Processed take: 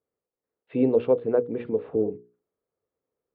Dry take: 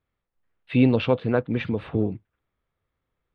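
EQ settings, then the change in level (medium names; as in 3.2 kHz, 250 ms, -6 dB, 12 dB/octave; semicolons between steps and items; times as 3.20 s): band-pass filter 440 Hz, Q 1.2; peaking EQ 450 Hz +7 dB 0.28 oct; hum notches 60/120/180/240/300/360/420/480 Hz; 0.0 dB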